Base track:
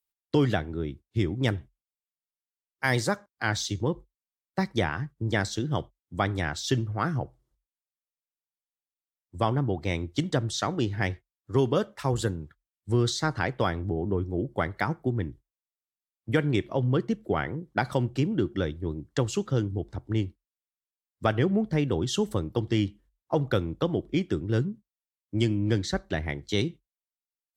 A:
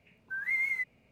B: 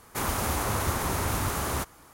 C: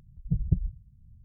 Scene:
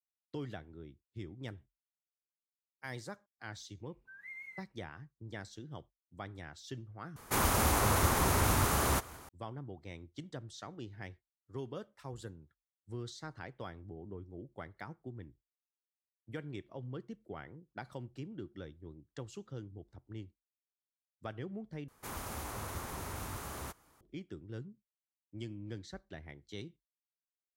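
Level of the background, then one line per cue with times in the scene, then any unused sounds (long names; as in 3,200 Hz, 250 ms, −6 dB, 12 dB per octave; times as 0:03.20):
base track −18.5 dB
0:03.77: mix in A −17.5 dB
0:07.16: overwrite with B −0.5 dB + feedback echo with a swinging delay time 178 ms, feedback 56%, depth 190 cents, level −23 dB
0:21.88: overwrite with B −13.5 dB
not used: C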